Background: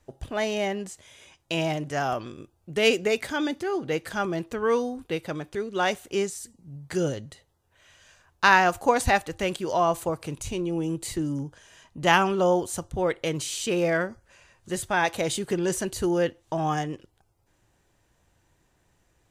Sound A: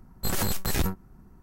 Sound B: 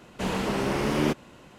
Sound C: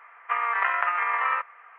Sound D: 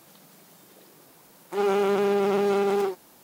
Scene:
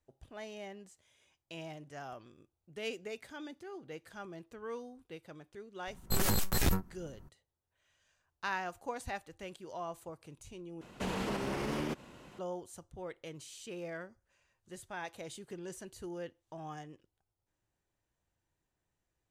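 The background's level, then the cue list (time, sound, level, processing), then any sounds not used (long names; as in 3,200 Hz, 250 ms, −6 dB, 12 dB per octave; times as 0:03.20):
background −18.5 dB
0:05.87: mix in A −3 dB
0:10.81: overwrite with B −4 dB + brickwall limiter −23 dBFS
not used: C, D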